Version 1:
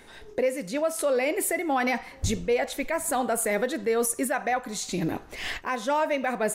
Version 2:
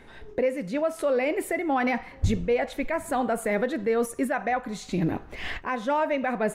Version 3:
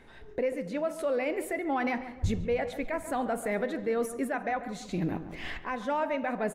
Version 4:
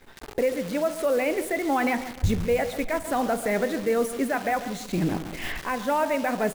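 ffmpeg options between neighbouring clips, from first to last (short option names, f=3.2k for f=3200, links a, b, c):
-af "bass=f=250:g=5,treble=f=4k:g=-12"
-filter_complex "[0:a]asplit=2[a][b];[b]adelay=141,lowpass=f=1.5k:p=1,volume=-11dB,asplit=2[c][d];[d]adelay=141,lowpass=f=1.5k:p=1,volume=0.46,asplit=2[e][f];[f]adelay=141,lowpass=f=1.5k:p=1,volume=0.46,asplit=2[g][h];[h]adelay=141,lowpass=f=1.5k:p=1,volume=0.46,asplit=2[i][j];[j]adelay=141,lowpass=f=1.5k:p=1,volume=0.46[k];[a][c][e][g][i][k]amix=inputs=6:normalize=0,volume=-5dB"
-af "acrusher=bits=8:dc=4:mix=0:aa=0.000001,volume=5.5dB"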